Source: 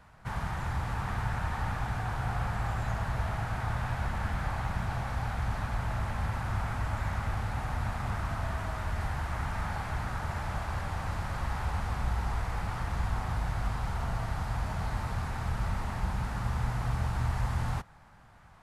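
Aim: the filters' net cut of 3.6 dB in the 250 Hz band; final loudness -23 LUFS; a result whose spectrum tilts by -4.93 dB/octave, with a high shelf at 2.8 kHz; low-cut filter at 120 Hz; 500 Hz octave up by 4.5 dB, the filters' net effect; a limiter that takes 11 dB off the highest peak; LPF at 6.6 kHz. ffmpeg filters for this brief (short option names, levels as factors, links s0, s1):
-af "highpass=120,lowpass=6600,equalizer=f=250:t=o:g=-6,equalizer=f=500:t=o:g=7,highshelf=f=2800:g=6,volume=7.5,alimiter=limit=0.188:level=0:latency=1"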